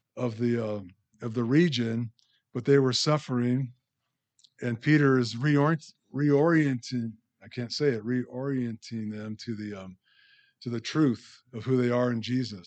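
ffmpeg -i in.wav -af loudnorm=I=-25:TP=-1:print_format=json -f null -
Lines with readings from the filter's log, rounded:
"input_i" : "-27.6",
"input_tp" : "-9.8",
"input_lra" : "6.4",
"input_thresh" : "-38.6",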